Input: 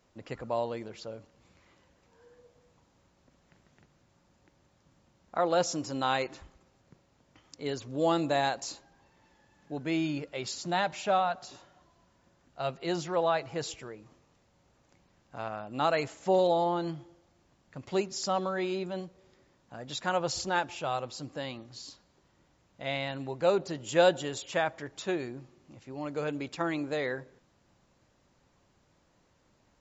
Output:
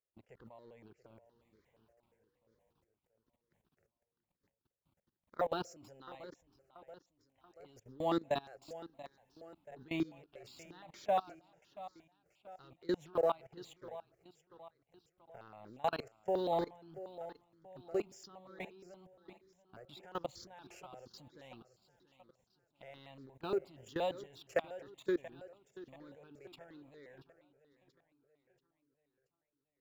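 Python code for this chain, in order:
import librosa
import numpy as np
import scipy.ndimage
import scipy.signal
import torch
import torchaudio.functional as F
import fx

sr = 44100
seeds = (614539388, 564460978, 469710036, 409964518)

y = fx.law_mismatch(x, sr, coded='A')
y = fx.peak_eq(y, sr, hz=400.0, db=9.5, octaves=0.93)
y = fx.level_steps(y, sr, step_db=24)
y = fx.echo_feedback(y, sr, ms=682, feedback_pct=50, wet_db=-15.5)
y = fx.phaser_held(y, sr, hz=8.5, low_hz=970.0, high_hz=2700.0)
y = y * librosa.db_to_amplitude(-3.0)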